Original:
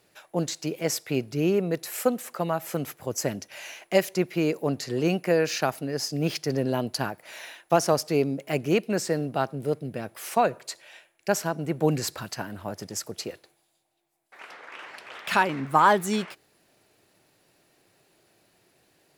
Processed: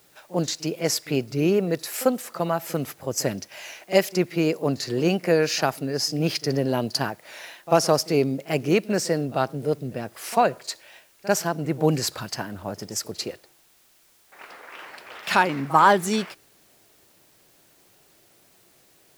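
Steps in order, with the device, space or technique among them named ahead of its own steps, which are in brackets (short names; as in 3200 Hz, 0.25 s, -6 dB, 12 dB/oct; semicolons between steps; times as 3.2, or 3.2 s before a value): bell 4900 Hz +4 dB 0.48 oct; plain cassette with noise reduction switched in (mismatched tape noise reduction decoder only; wow and flutter; white noise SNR 34 dB); pre-echo 44 ms -19 dB; gain +2.5 dB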